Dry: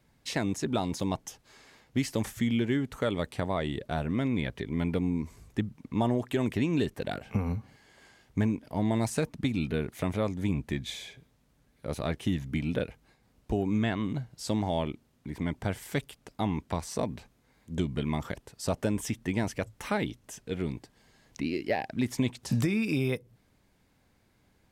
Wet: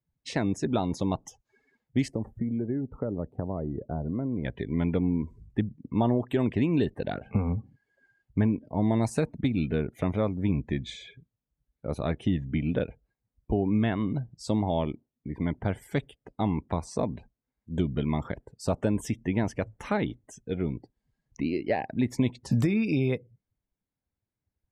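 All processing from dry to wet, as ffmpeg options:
ffmpeg -i in.wav -filter_complex "[0:a]asettb=1/sr,asplit=3[link_01][link_02][link_03];[link_01]atrim=end=2.084[link_04];[link_02]atrim=start=2.08:end=4.45,asetpts=PTS-STARTPTS,afade=type=in:duration=0.004:curve=qsin,afade=type=out:start_time=2.366:duration=0.004:curve=qsin,equalizer=frequency=4600:width_type=o:width=2.4:gain=-12.5,acrossover=split=480|1200[link_05][link_06][link_07];[link_05]acompressor=threshold=-31dB:ratio=4[link_08];[link_06]acompressor=threshold=-41dB:ratio=4[link_09];[link_07]acompressor=threshold=-59dB:ratio=4[link_10];[link_08][link_09][link_10]amix=inputs=3:normalize=0[link_11];[link_03]atrim=start=4.446[link_12];[link_04][link_11]acrossfade=duration=0.004:curve1=hsin:curve2=qsin[link_13];[link_13][link_12]acrossfade=duration=0.004:curve1=qsin:curve2=hsin,afftdn=noise_reduction=26:noise_floor=-48,tiltshelf=frequency=1500:gain=3" out.wav

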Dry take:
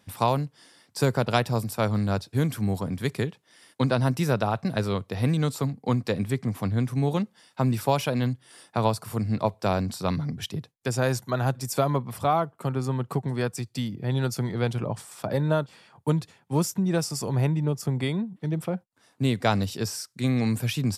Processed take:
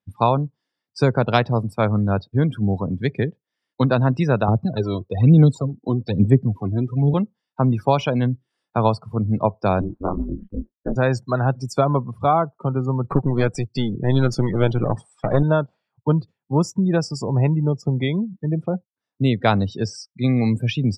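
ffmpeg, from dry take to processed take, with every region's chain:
ffmpeg -i in.wav -filter_complex "[0:a]asettb=1/sr,asplit=3[link_01][link_02][link_03];[link_01]atrim=end=4.484[link_04];[link_02]atrim=start=4.48:end=7.14,asetpts=PTS-STARTPTS,afade=type=in:duration=0.004:curve=qsin,afade=type=out:start_time=2.656:duration=0.004:curve=qsin,equalizer=frequency=1700:width_type=o:width=1.4:gain=-4,acrossover=split=470|3000[link_05][link_06][link_07];[link_06]acompressor=threshold=-36dB:ratio=6:attack=3.2:release=140:knee=2.83:detection=peak[link_08];[link_05][link_08][link_07]amix=inputs=3:normalize=0,aphaser=in_gain=1:out_gain=1:delay=3.1:decay=0.6:speed=1.1:type=sinusoidal[link_09];[link_03]atrim=start=7.136[link_10];[link_04][link_09]acrossfade=duration=0.004:curve1=hsin:curve2=qsin[link_11];[link_11][link_10]acrossfade=duration=0.004:curve1=qsin:curve2=hsin,asettb=1/sr,asplit=3[link_12][link_13][link_14];[link_12]atrim=end=9.814[link_15];[link_13]atrim=start=9.81:end=10.96,asetpts=PTS-STARTPTS,afade=type=in:duration=0.004:curve=qsin,afade=type=out:start_time=1.146:duration=0.004:curve=qsin,lowpass=frequency=1400:width=0.5412,lowpass=frequency=1400:width=1.3066,asplit=2[link_16][link_17];[link_17]adelay=25,volume=-3dB[link_18];[link_16][link_18]amix=inputs=2:normalize=0,atrim=end_sample=50715,aeval=exprs='val(0)*sin(2*PI*100*n/s)':channel_layout=same[link_19];[link_14]atrim=start=10.956[link_20];[link_15][link_19]acrossfade=duration=0.004:curve1=hsin:curve2=qsin[link_21];[link_21][link_20]acrossfade=duration=0.004:curve1=qsin:curve2=hsin,asettb=1/sr,asplit=3[link_22][link_23][link_24];[link_22]atrim=end=13.044[link_25];[link_23]atrim=start=13.04:end=15.43,asetpts=PTS-STARTPTS,afade=type=in:duration=0.004:curve=qsin,afade=type=out:start_time=2.386:duration=0.004:curve=qsin,acontrast=27,aeval=exprs='clip(val(0),-1,0.0299)':channel_layout=same[link_26];[link_24]atrim=start=15.426[link_27];[link_25][link_26]acrossfade=duration=0.004:curve1=hsin:curve2=qsin[link_28];[link_28][link_27]acrossfade=duration=0.004:curve1=qsin:curve2=hsin,afftdn=noise_reduction=30:noise_floor=-35,lowpass=5200,volume=5.5dB" out.wav

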